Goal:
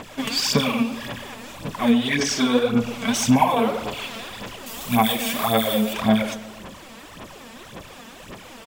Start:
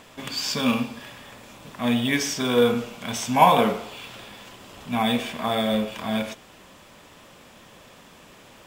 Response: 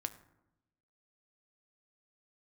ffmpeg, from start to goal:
-filter_complex "[0:a]asettb=1/sr,asplit=3[a][b][c];[a]atrim=end=1.914[d];[b]atrim=start=1.91:end=3.14,asetpts=PTS-STARTPTS,afade=t=in:d=0.004:c=qsin,afade=t=out:st=1.226:d=0.004:c=qsin,acrossover=split=8800[e][f];[f]acompressor=threshold=-54dB:ratio=4:attack=1:release=60[g];[e][g]amix=inputs=2:normalize=0[h];[c]atrim=start=3.136[i];[d][h]acrossfade=d=0.004:c1=hsin:c2=qsin[j];[j][i]acrossfade=d=0.004:c1=qsin:c2=hsin,asettb=1/sr,asplit=3[k][l][m];[k]atrim=end=4.664[n];[l]atrim=start=4.66:end=5.93,asetpts=PTS-STARTPTS,afade=t=in:d=0.004:c=qsin,afade=t=out:st=1.266:d=0.004:c=qsin,aemphasis=mode=production:type=50fm[o];[m]atrim=start=5.926[p];[n][o]acrossfade=d=0.004:c1=hsin:c2=qsin[q];[q][p]acrossfade=d=0.004:c1=qsin:c2=hsin,acompressor=threshold=-26dB:ratio=4,aphaser=in_gain=1:out_gain=1:delay=4.5:decay=0.68:speed=1.8:type=sinusoidal,asplit=2[r][s];[s]adelay=120,lowpass=f=2k:p=1,volume=-14.5dB,asplit=2[t][u];[u]adelay=120,lowpass=f=2k:p=1,volume=0.55,asplit=2[v][w];[w]adelay=120,lowpass=f=2k:p=1,volume=0.55,asplit=2[x][y];[y]adelay=120,lowpass=f=2k:p=1,volume=0.55,asplit=2[z][aa];[aa]adelay=120,lowpass=f=2k:p=1,volume=0.55[ab];[r][t][v][x][z][ab]amix=inputs=6:normalize=0,volume=4.5dB"

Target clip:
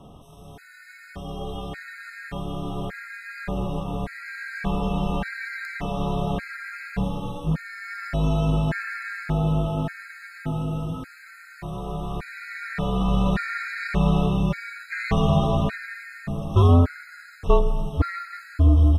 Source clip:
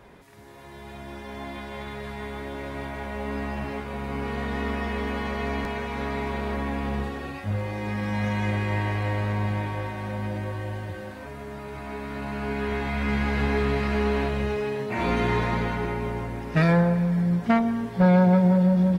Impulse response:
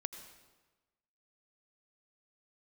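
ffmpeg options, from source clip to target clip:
-af "afreqshift=-260,afftfilt=real='re*gt(sin(2*PI*0.86*pts/sr)*(1-2*mod(floor(b*sr/1024/1300),2)),0)':imag='im*gt(sin(2*PI*0.86*pts/sr)*(1-2*mod(floor(b*sr/1024/1300),2)),0)':win_size=1024:overlap=0.75,volume=5dB"

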